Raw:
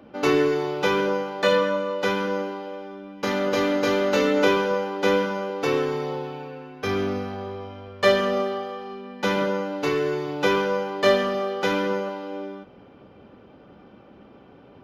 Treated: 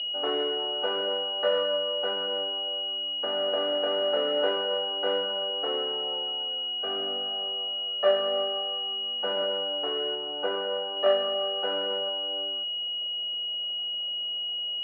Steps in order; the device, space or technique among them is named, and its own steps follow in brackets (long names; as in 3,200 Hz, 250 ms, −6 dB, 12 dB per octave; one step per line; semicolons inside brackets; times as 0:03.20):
toy sound module (linearly interpolated sample-rate reduction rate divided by 8×; switching amplifier with a slow clock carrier 2,900 Hz; loudspeaker in its box 610–4,300 Hz, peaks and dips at 660 Hz +8 dB, 1,000 Hz −8 dB, 1,500 Hz +3 dB, 2,200 Hz −4 dB, 3,200 Hz +5 dB)
0:10.15–0:10.97: high-shelf EQ 4,400 Hz −11.5 dB
level −2.5 dB